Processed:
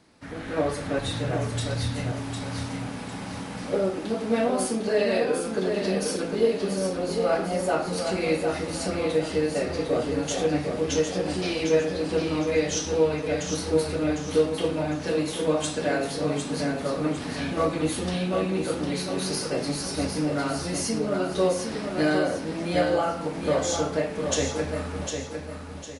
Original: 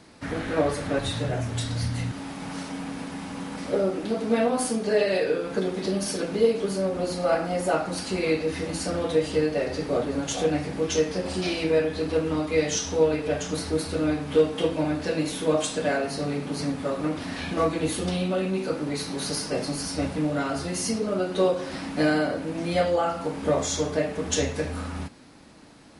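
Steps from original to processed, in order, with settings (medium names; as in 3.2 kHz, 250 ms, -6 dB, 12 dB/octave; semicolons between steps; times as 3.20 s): level rider gain up to 7.5 dB; feedback delay 754 ms, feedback 36%, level -6 dB; trim -8 dB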